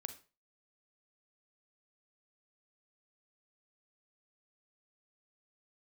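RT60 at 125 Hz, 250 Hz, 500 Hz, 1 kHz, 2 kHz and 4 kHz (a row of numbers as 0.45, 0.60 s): 0.35, 0.30, 0.35, 0.35, 0.30, 0.30 s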